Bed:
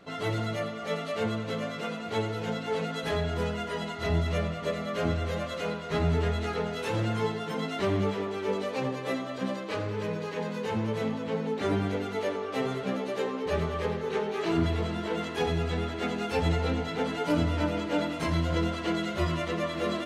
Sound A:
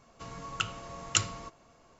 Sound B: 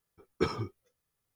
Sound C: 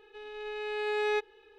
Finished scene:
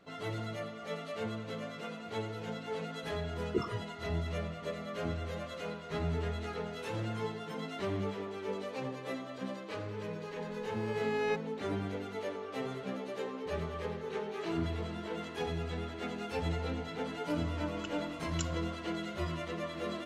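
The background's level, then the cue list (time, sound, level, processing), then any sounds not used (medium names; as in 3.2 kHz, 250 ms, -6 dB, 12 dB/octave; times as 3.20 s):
bed -8 dB
3.14 s: add B -3.5 dB + resonances exaggerated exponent 3
10.16 s: add C -3 dB + local Wiener filter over 15 samples
17.24 s: add A -16 dB + comb 2.7 ms, depth 71%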